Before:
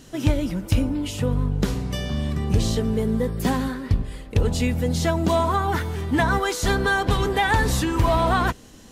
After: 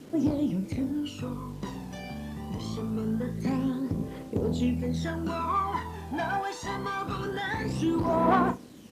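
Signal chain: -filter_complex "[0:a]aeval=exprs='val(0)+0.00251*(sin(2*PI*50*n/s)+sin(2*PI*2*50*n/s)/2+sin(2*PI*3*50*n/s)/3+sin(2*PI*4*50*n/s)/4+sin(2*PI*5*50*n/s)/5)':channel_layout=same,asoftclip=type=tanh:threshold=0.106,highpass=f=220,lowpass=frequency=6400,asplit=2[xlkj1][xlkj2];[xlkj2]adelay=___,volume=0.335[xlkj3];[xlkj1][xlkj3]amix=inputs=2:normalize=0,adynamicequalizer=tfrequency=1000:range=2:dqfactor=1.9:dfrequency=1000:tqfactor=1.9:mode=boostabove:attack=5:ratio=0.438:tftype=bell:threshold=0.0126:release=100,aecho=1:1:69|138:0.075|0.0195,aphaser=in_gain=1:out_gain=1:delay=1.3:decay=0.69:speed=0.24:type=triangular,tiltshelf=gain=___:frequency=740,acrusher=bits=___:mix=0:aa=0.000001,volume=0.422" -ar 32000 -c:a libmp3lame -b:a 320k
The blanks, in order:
37, 5, 7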